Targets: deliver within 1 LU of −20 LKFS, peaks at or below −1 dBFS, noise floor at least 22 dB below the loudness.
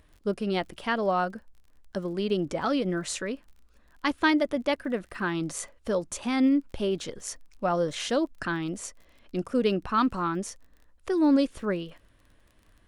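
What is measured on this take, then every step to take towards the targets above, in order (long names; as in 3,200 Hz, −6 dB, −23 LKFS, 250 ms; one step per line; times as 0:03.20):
crackle rate 39 per second; integrated loudness −28.5 LKFS; sample peak −11.0 dBFS; target loudness −20.0 LKFS
→ click removal
level +8.5 dB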